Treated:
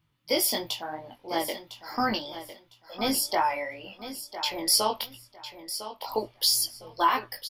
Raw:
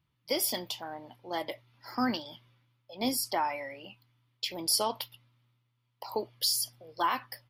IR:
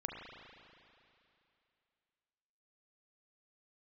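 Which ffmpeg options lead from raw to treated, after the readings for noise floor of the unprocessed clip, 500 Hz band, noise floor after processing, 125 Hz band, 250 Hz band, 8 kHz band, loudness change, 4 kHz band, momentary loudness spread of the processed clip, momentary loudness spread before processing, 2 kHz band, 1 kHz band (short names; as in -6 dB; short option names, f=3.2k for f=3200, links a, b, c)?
-77 dBFS, +4.5 dB, -64 dBFS, +3.0 dB, +2.0 dB, +5.0 dB, +4.5 dB, +5.5 dB, 18 LU, 18 LU, +5.5 dB, +5.5 dB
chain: -af "asubboost=boost=5:cutoff=68,flanger=delay=18:depth=2.9:speed=2.9,aecho=1:1:1005|2010|3015:0.251|0.0578|0.0133,volume=8dB"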